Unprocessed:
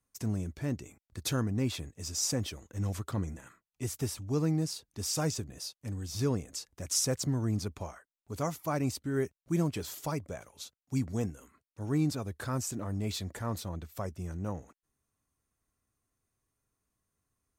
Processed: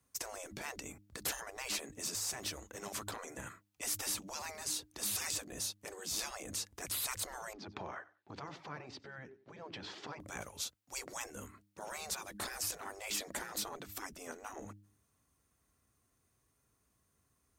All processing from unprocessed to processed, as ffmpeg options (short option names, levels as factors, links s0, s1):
-filter_complex "[0:a]asettb=1/sr,asplit=3[s0][s1][s2];[s0]atrim=end=2.144[s3];[s1]atrim=start=2.14:end=3.19,asetpts=PTS-STARTPTS,afade=t=in:d=0.004:c=qsin,afade=t=out:st=1.046:d=0.004:c=qsin,aeval=exprs='if(lt(val(0),0),0.708*val(0),val(0))':c=same,equalizer=f=140:w=0.94:g=-15,acompressor=threshold=0.0158:ratio=4:attack=3.2:release=140:knee=1:detection=peak[s4];[s2]atrim=start=3.186[s5];[s3][s4]acrossfade=d=0.004:c1=hsin:c2=qsin[s6];[s6][s5]acrossfade=d=0.004:c1=qsin:c2=hsin,asettb=1/sr,asplit=3[s7][s8][s9];[s7]atrim=end=7.534[s10];[s8]atrim=start=7.53:end=10.2,asetpts=PTS-STARTPTS,afade=t=in:d=0.004:c=qsin,afade=t=out:st=2.666:d=0.004:c=qsin,acompressor=threshold=0.00794:ratio=12:attack=3.2:release=140:knee=1:detection=peak,highpass=170,equalizer=f=370:t=q:w=4:g=7,equalizer=f=850:t=q:w=4:g=6,equalizer=f=1700:t=q:w=4:g=4,lowpass=f=4300:w=0.5412,lowpass=f=4300:w=1.3066,aecho=1:1:94|188:0.1|0.023,atrim=end_sample=117747[s11];[s9]atrim=start=10.196[s12];[s10][s11]acrossfade=d=0.004:c1=hsin:c2=qsin[s13];[s13][s12]acrossfade=d=0.004:c1=qsin:c2=hsin,highpass=f=43:w=0.5412,highpass=f=43:w=1.3066,bandreject=f=101.9:t=h:w=4,bandreject=f=203.8:t=h:w=4,bandreject=f=305.7:t=h:w=4,afftfilt=real='re*lt(hypot(re,im),0.0224)':imag='im*lt(hypot(re,im),0.0224)':win_size=1024:overlap=0.75,volume=2.11"